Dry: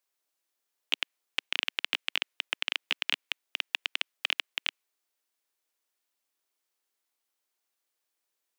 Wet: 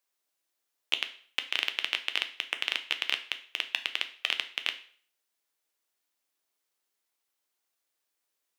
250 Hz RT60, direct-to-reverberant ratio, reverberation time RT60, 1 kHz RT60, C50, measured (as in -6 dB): 0.50 s, 7.5 dB, 0.50 s, 0.50 s, 14.0 dB